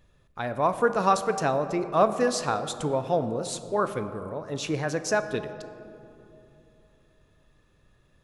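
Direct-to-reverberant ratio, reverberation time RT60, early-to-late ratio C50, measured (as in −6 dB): 9.5 dB, 3.0 s, 11.0 dB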